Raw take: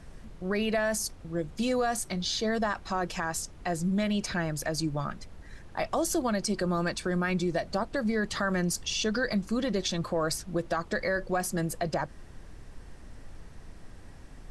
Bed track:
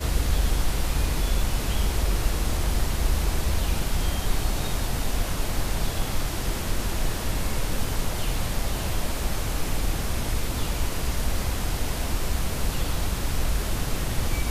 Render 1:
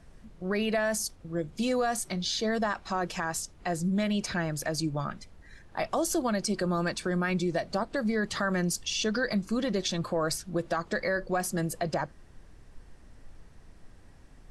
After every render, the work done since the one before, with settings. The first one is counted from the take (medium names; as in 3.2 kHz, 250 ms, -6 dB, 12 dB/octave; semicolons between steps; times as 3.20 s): noise print and reduce 6 dB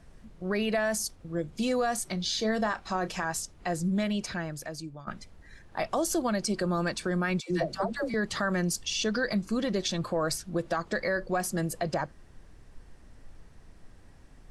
2.24–3.33 s: doubling 32 ms -13.5 dB; 3.94–5.07 s: fade out linear, to -16 dB; 7.40–8.14 s: phase dispersion lows, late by 108 ms, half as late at 550 Hz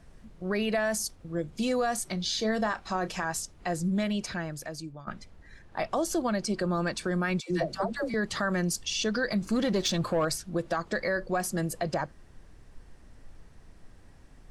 4.92–6.95 s: treble shelf 6.7 kHz -6 dB; 9.41–10.25 s: waveshaping leveller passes 1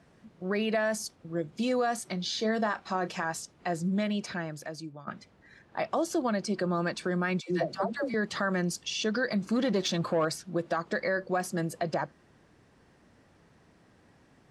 high-pass 140 Hz 12 dB/octave; treble shelf 7.6 kHz -11 dB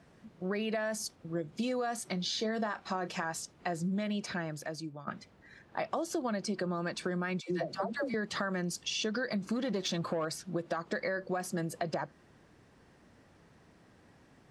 compression, threshold -30 dBFS, peak gain reduction 7.5 dB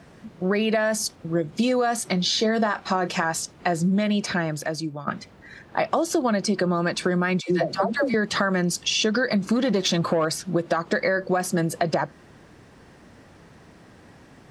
trim +11.5 dB